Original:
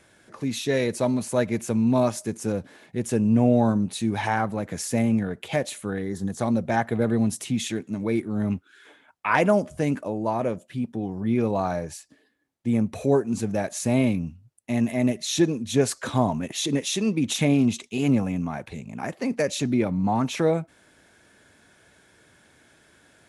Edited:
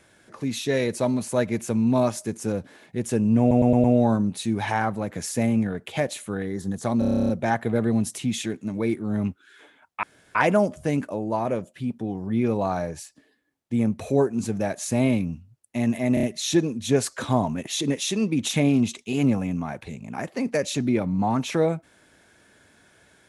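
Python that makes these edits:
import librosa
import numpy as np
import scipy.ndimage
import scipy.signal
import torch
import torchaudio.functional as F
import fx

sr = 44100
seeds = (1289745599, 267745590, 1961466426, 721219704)

y = fx.edit(x, sr, fx.stutter(start_s=3.4, slice_s=0.11, count=5),
    fx.stutter(start_s=6.55, slice_s=0.03, count=11),
    fx.insert_room_tone(at_s=9.29, length_s=0.32),
    fx.stutter(start_s=15.08, slice_s=0.03, count=4), tone=tone)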